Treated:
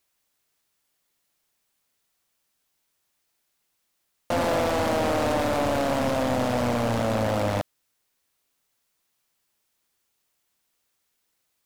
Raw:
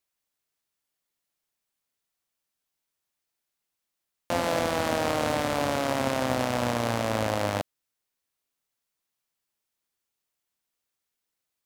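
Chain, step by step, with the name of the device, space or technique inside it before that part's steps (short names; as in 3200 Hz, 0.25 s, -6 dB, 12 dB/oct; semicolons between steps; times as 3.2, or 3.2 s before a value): saturation between pre-emphasis and de-emphasis (high shelf 4900 Hz +11 dB; soft clip -27.5 dBFS, distortion -4 dB; high shelf 4900 Hz -11 dB); gain +9 dB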